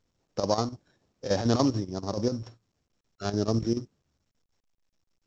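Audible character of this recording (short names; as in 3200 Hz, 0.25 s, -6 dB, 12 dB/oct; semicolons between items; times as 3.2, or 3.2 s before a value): a buzz of ramps at a fixed pitch in blocks of 8 samples; chopped level 6.9 Hz, depth 65%, duty 75%; µ-law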